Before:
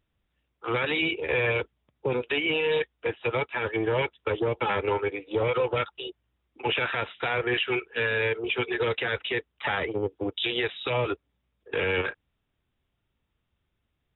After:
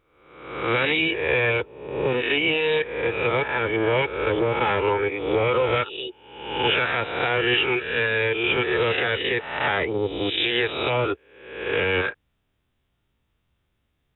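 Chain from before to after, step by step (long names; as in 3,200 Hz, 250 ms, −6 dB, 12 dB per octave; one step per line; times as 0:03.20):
peak hold with a rise ahead of every peak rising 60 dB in 0.85 s
level +2.5 dB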